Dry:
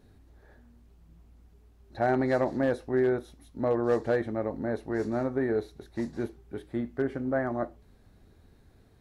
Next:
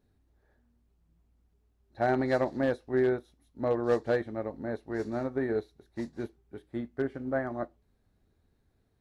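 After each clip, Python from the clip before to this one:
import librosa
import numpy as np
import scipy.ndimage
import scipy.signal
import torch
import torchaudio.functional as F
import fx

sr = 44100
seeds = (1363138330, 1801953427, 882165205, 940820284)

y = fx.dynamic_eq(x, sr, hz=3800.0, q=1.1, threshold_db=-54.0, ratio=4.0, max_db=4)
y = fx.upward_expand(y, sr, threshold_db=-47.0, expansion=1.5)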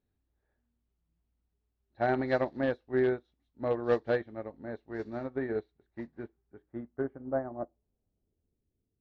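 y = fx.filter_sweep_lowpass(x, sr, from_hz=3500.0, to_hz=370.0, start_s=5.33, end_s=8.82, q=1.2)
y = fx.upward_expand(y, sr, threshold_db=-44.0, expansion=1.5)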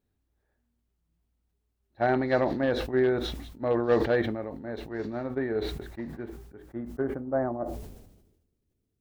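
y = fx.sustainer(x, sr, db_per_s=53.0)
y = y * 10.0 ** (3.0 / 20.0)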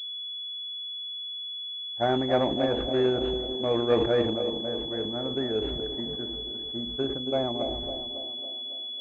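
y = fx.echo_wet_bandpass(x, sr, ms=276, feedback_pct=57, hz=460.0, wet_db=-7.0)
y = fx.pwm(y, sr, carrier_hz=3400.0)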